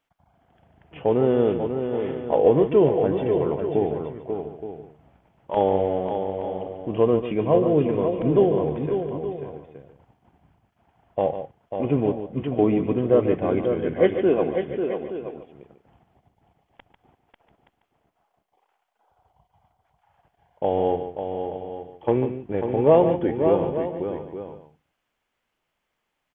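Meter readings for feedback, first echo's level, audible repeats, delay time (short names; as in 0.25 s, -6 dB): no steady repeat, -10.0 dB, 5, 0.145 s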